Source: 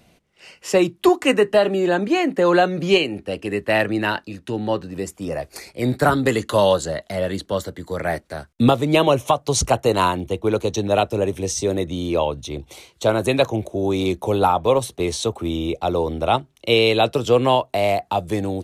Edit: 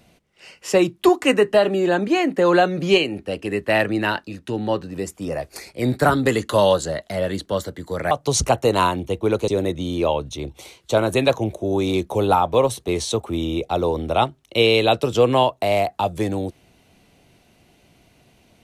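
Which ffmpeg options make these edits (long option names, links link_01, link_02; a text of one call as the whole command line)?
ffmpeg -i in.wav -filter_complex "[0:a]asplit=3[link_01][link_02][link_03];[link_01]atrim=end=8.112[link_04];[link_02]atrim=start=9.318:end=10.692[link_05];[link_03]atrim=start=11.598[link_06];[link_04][link_05]acrossfade=duration=0.004:curve1=hsin:curve2=hsin[link_07];[link_07][link_06]acrossfade=duration=0.004:curve1=hsin:curve2=hsin" out.wav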